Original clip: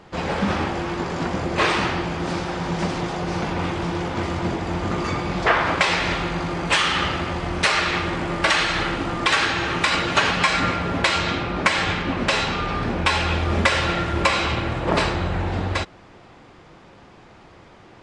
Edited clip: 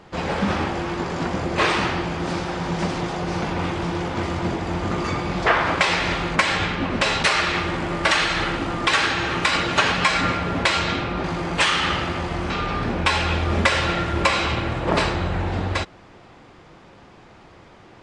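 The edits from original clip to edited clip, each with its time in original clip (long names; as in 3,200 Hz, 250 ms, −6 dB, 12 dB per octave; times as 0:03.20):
0:06.36–0:07.62: swap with 0:11.63–0:12.50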